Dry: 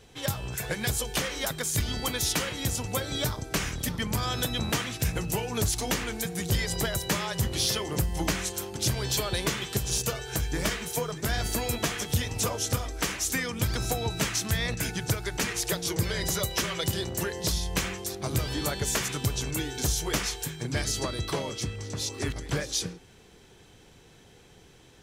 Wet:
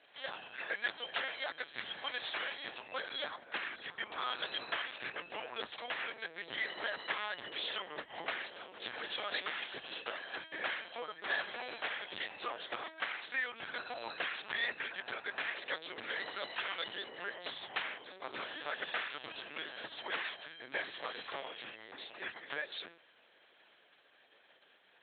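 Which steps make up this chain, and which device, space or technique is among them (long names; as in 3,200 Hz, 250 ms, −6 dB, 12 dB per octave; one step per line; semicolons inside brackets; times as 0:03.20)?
talking toy (linear-prediction vocoder at 8 kHz pitch kept; high-pass filter 660 Hz 12 dB per octave; parametric band 1,700 Hz +5 dB 0.48 octaves)
level −5.5 dB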